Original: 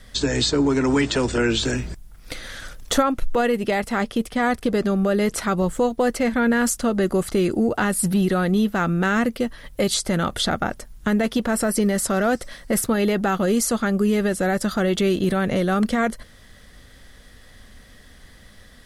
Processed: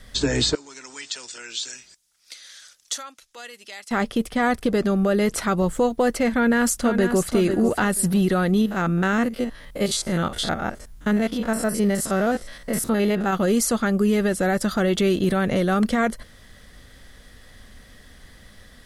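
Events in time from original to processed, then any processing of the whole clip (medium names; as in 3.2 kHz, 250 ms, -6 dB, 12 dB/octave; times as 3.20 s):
0.55–3.91 s: band-pass filter 6 kHz, Q 1.3
6.33–7.30 s: echo throw 490 ms, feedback 20%, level -8 dB
8.61–13.33 s: spectrogram pixelated in time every 50 ms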